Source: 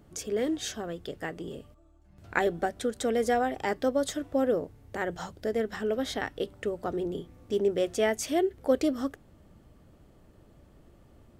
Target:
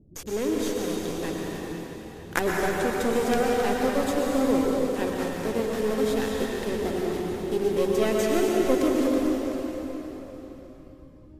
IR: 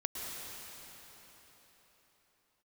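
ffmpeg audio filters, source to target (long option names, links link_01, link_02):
-filter_complex "[0:a]acrossover=split=470[link_01][link_02];[link_02]acrusher=bits=4:dc=4:mix=0:aa=0.000001[link_03];[link_01][link_03]amix=inputs=2:normalize=0[link_04];[1:a]atrim=start_sample=2205[link_05];[link_04][link_05]afir=irnorm=-1:irlink=0,volume=3.5dB" -ar 32000 -c:a libmp3lame -b:a 56k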